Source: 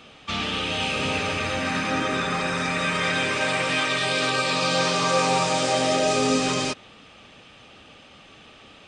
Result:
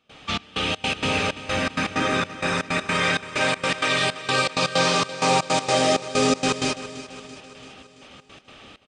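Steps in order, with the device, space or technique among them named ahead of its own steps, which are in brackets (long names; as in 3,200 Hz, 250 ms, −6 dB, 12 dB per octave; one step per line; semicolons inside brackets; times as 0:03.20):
trance gate with a delay (gate pattern ".xxx..xx.x" 161 BPM −24 dB; repeating echo 336 ms, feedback 57%, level −15 dB)
level +2.5 dB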